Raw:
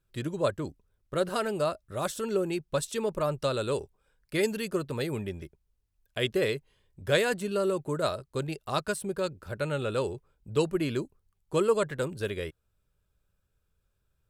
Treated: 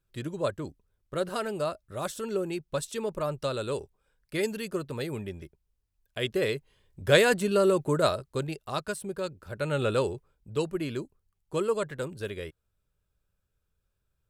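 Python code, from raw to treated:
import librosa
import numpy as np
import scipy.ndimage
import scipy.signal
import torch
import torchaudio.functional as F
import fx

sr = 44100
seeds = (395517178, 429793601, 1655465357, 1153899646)

y = fx.gain(x, sr, db=fx.line((6.19, -2.0), (7.2, 5.0), (7.98, 5.0), (8.74, -2.5), (9.5, -2.5), (9.85, 4.5), (10.51, -3.0)))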